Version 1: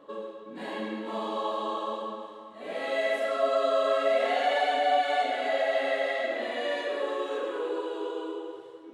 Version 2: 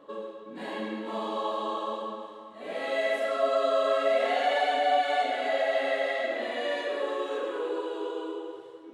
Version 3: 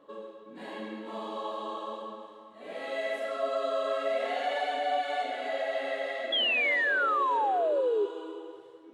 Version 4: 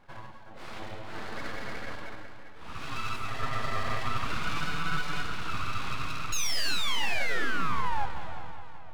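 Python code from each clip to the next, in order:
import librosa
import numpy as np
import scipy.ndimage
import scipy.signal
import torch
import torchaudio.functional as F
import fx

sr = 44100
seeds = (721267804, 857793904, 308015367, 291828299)

y1 = x
y2 = fx.spec_paint(y1, sr, seeds[0], shape='fall', start_s=6.32, length_s=1.74, low_hz=390.0, high_hz=3400.0, level_db=-22.0)
y2 = F.gain(torch.from_numpy(y2), -5.0).numpy()
y3 = np.abs(y2)
y3 = fx.echo_wet_lowpass(y3, sr, ms=192, feedback_pct=70, hz=3100.0, wet_db=-14)
y3 = F.gain(torch.from_numpy(y3), 1.5).numpy()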